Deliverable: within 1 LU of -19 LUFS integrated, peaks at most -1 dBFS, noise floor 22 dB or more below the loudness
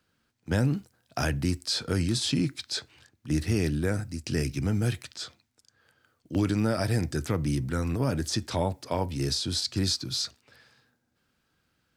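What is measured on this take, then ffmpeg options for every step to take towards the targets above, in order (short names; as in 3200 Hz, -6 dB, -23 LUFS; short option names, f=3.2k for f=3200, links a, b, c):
loudness -29.0 LUFS; peak -14.5 dBFS; loudness target -19.0 LUFS
-> -af "volume=10dB"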